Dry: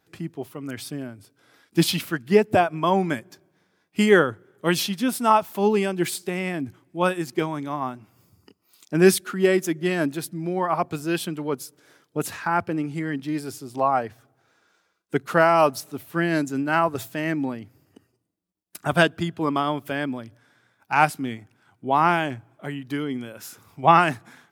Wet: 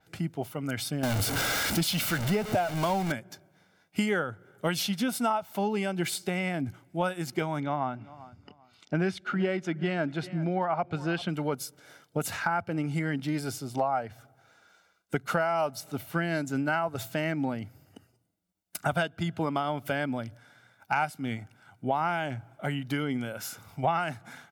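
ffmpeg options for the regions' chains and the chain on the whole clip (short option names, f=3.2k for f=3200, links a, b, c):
-filter_complex "[0:a]asettb=1/sr,asplit=3[a][b][c];[a]atrim=end=1.034[d];[b]atrim=start=1.03:end=3.12,asetpts=PTS-STARTPTS,afade=t=in:d=0.004:c=qsin,afade=t=out:st=2.086:d=0.004:c=qsin,aeval=exprs='val(0)+0.5*0.075*sgn(val(0))':c=same,highshelf=f=5.8k:g=5.5[e];[c]atrim=start=3.116[f];[d][e]acrossfade=d=0.004:c1=hsin:c2=qsin[g];[g][f]acrossfade=d=0.004:c1=qsin:c2=hsin,asettb=1/sr,asplit=3[h][i][j];[h]atrim=end=7.604[k];[i]atrim=start=7.6:end=11.29,asetpts=PTS-STARTPTS,afade=t=in:d=0.004:c=qsin,afade=t=out:st=3.686:d=0.004:c=qsin,lowpass=3.5k,aecho=1:1:391|782:0.0794|0.0199,atrim=end_sample=162729[l];[j]atrim=start=11.286[m];[k][l]acrossfade=d=0.004:c1=hsin:c2=qsin[n];[n][m]acrossfade=d=0.004:c1=qsin:c2=hsin,aecho=1:1:1.4:0.45,acompressor=threshold=-27dB:ratio=6,adynamicequalizer=threshold=0.00251:dfrequency=6500:dqfactor=0.7:tfrequency=6500:tqfactor=0.7:attack=5:release=100:ratio=0.375:range=2.5:mode=cutabove:tftype=highshelf,volume=2dB"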